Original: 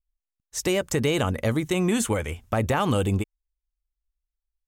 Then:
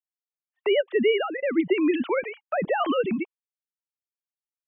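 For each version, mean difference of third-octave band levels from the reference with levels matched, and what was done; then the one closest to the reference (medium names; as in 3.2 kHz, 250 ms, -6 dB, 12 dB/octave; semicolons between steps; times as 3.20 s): 18.0 dB: formants replaced by sine waves; gate -41 dBFS, range -32 dB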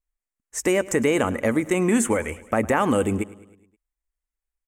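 4.0 dB: graphic EQ 125/250/500/1000/2000/4000/8000 Hz -6/+9/+5/+4/+10/-11/+9 dB; on a send: feedback delay 105 ms, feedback 57%, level -20 dB; on the sum: trim -3.5 dB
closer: second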